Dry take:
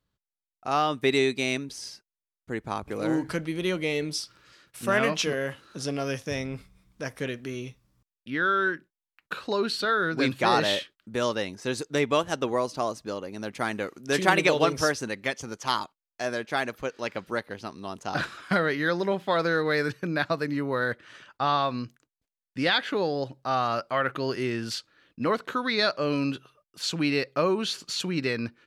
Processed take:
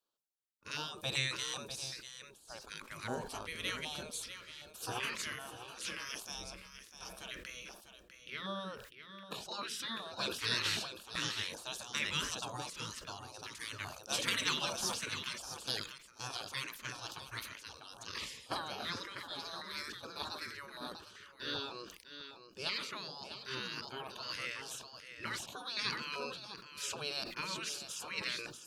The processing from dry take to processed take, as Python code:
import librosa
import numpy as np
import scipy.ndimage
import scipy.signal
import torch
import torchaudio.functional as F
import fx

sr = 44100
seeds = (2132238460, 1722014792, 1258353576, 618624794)

y = fx.graphic_eq_15(x, sr, hz=(100, 250, 630, 2500), db=(8, -7, -11, -5), at=(18.95, 21.56))
y = y + 10.0 ** (-10.5 / 20.0) * np.pad(y, (int(649 * sr / 1000.0), 0))[:len(y)]
y = fx.spec_gate(y, sr, threshold_db=-15, keep='weak')
y = fx.filter_lfo_notch(y, sr, shape='square', hz=1.3, low_hz=750.0, high_hz=2000.0, q=1.1)
y = fx.sustainer(y, sr, db_per_s=68.0)
y = F.gain(torch.from_numpy(y), -2.0).numpy()